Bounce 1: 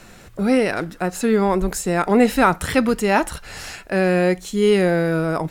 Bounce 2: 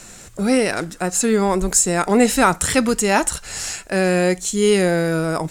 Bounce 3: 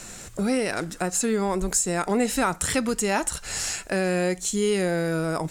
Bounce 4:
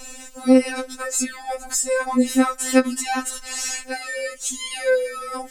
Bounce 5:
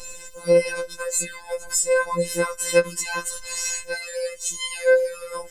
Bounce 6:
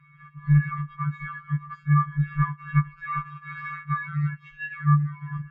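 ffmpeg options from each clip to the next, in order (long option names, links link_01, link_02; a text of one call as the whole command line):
ffmpeg -i in.wav -af "equalizer=frequency=7600:width_type=o:width=1.1:gain=14.5" out.wav
ffmpeg -i in.wav -af "acompressor=threshold=-26dB:ratio=2" out.wav
ffmpeg -i in.wav -af "afftfilt=real='re*3.46*eq(mod(b,12),0)':imag='im*3.46*eq(mod(b,12),0)':win_size=2048:overlap=0.75,volume=4dB" out.wav
ffmpeg -i in.wav -af "afftfilt=real='hypot(re,im)*cos(PI*b)':imag='0':win_size=1024:overlap=0.75,volume=2.5dB" out.wav
ffmpeg -i in.wav -af "highpass=frequency=410:width_type=q:width=0.5412,highpass=frequency=410:width_type=q:width=1.307,lowpass=frequency=2400:width_type=q:width=0.5176,lowpass=frequency=2400:width_type=q:width=0.7071,lowpass=frequency=2400:width_type=q:width=1.932,afreqshift=-370,dynaudnorm=framelen=140:gausssize=3:maxgain=12dB,afftfilt=real='re*(1-between(b*sr/4096,190,1000))':imag='im*(1-between(b*sr/4096,190,1000))':win_size=4096:overlap=0.75,volume=-8.5dB" out.wav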